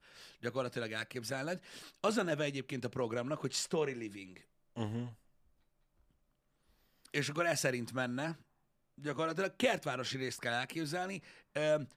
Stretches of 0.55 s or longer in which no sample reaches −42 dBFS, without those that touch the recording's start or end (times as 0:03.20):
0:05.10–0:07.06
0:08.33–0:09.02